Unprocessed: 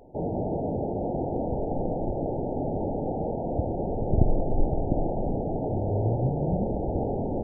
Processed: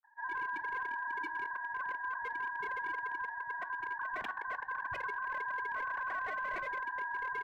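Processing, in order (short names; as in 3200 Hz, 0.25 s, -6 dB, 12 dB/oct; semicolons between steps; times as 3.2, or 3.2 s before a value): sine-wave speech; inverse Chebyshev low-pass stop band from 690 Hz, stop band 40 dB; flange 1 Hz, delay 7.5 ms, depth 8 ms, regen -87%; wavefolder -32 dBFS; ring modulator 1300 Hz; bands offset in time lows, highs 30 ms, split 190 Hz; on a send at -16 dB: reverb RT60 0.30 s, pre-delay 3 ms; on the sum: gain +1.5 dB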